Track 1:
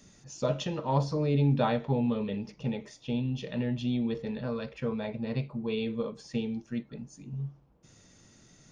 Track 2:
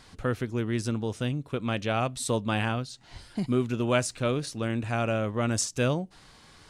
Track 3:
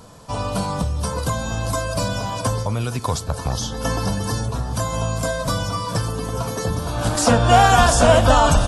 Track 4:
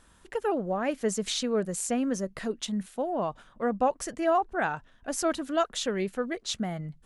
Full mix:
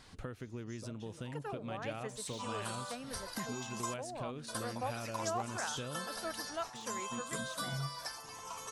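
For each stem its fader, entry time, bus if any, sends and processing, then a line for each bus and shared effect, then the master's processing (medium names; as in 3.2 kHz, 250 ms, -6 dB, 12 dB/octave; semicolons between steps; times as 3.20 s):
-2.5 dB, 0.40 s, no send, compression, threshold -33 dBFS, peak gain reduction 11.5 dB; auto duck -17 dB, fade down 1.10 s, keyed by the second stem
-4.5 dB, 0.00 s, no send, compression 12:1, threshold -35 dBFS, peak gain reduction 16 dB
-13.5 dB, 2.10 s, muted 3.94–4.48 s, no send, drifting ripple filter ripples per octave 0.72, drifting +0.64 Hz, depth 8 dB; high-pass 970 Hz 12 dB/octave
-9.0 dB, 1.00 s, no send, de-esser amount 90%; high-pass 950 Hz 6 dB/octave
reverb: none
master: none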